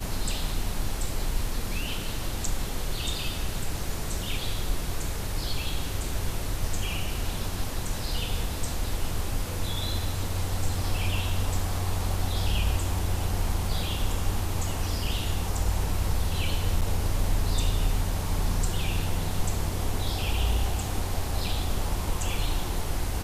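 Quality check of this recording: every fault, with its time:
0:16.81–0:16.82: drop-out 7.5 ms

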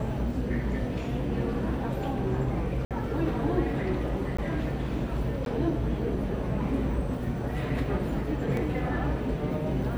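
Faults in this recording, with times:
0:02.85–0:02.91: drop-out 57 ms
0:04.37–0:04.38: drop-out 15 ms
0:05.45–0:05.46: drop-out 12 ms
0:08.57: drop-out 2.1 ms

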